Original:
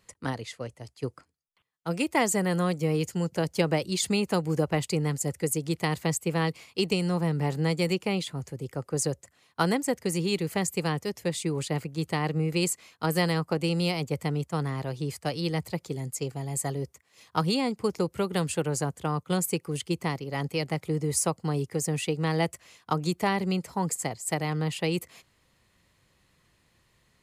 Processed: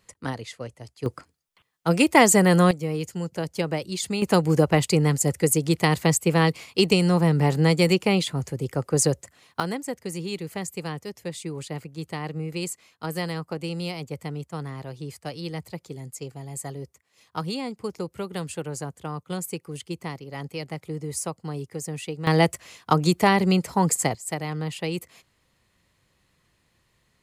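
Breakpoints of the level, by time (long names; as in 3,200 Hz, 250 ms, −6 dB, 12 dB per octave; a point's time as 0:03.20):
+1 dB
from 0:01.06 +9 dB
from 0:02.71 −1.5 dB
from 0:04.22 +7 dB
from 0:09.60 −4 dB
from 0:22.27 +7.5 dB
from 0:24.15 −1 dB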